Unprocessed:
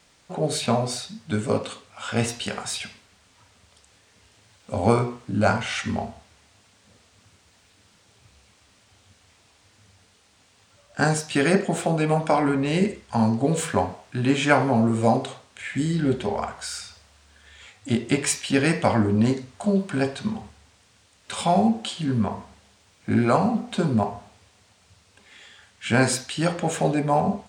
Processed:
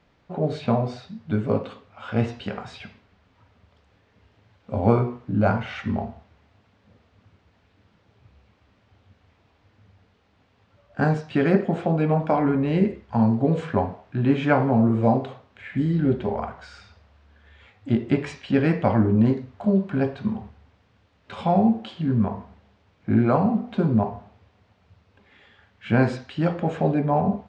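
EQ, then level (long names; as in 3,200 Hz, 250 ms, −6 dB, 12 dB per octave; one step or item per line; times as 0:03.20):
high-frequency loss of the air 94 metres
head-to-tape spacing loss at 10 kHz 24 dB
low-shelf EQ 410 Hz +3 dB
0.0 dB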